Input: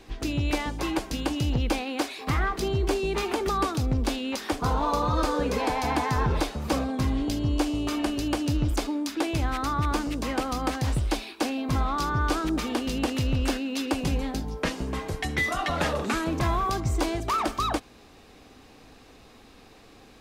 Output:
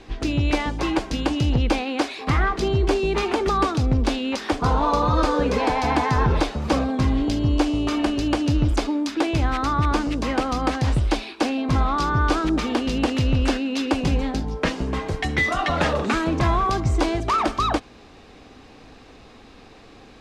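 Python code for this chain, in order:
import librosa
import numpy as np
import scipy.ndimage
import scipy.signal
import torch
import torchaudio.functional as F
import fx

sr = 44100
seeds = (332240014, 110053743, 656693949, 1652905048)

y = fx.air_absorb(x, sr, metres=67.0)
y = y * 10.0 ** (5.5 / 20.0)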